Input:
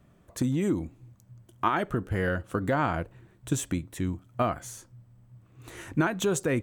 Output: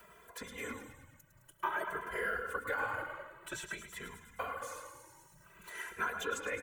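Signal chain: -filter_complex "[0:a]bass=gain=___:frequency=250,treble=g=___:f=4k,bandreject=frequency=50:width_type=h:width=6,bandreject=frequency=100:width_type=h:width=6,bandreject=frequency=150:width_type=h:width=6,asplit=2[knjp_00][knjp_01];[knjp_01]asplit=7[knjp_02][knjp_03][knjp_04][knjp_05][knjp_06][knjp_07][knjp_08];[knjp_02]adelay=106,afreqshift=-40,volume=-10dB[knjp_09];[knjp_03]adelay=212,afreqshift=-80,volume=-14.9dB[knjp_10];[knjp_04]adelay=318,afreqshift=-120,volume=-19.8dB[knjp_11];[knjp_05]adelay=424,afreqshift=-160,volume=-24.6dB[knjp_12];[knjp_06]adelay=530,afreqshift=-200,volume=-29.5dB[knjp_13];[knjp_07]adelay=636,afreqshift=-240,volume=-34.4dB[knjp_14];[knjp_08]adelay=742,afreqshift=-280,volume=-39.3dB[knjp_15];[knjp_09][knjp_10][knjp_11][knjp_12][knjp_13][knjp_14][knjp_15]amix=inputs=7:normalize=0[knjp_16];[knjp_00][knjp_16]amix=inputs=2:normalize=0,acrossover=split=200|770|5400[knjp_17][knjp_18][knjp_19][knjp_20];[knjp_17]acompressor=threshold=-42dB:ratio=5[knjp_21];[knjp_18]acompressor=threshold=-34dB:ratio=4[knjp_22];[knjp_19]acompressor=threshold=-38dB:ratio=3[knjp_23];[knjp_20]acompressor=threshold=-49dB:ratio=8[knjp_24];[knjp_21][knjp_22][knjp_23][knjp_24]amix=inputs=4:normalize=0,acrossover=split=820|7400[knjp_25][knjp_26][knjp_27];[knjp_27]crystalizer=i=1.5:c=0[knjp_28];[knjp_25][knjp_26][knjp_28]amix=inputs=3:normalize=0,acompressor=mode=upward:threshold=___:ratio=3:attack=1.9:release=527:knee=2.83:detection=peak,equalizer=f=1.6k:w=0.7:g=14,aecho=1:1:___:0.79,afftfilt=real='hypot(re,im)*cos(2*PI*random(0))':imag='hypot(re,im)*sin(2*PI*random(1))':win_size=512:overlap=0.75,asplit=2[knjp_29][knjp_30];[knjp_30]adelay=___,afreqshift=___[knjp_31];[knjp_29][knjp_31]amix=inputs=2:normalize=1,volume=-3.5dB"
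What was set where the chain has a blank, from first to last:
-12, 3, -41dB, 2, 2.6, 0.52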